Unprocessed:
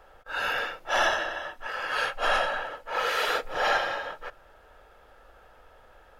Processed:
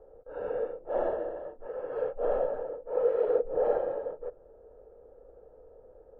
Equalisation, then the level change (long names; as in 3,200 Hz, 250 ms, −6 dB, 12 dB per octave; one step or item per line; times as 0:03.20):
low-pass with resonance 470 Hz, resonance Q 4.9
−3.0 dB